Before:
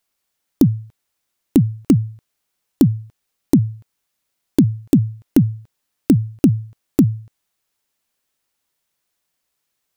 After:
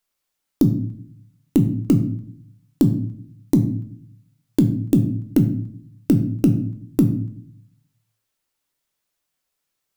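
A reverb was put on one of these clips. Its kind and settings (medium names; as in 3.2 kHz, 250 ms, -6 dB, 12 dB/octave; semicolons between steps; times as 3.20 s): simulated room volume 84 m³, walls mixed, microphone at 0.43 m; trim -4 dB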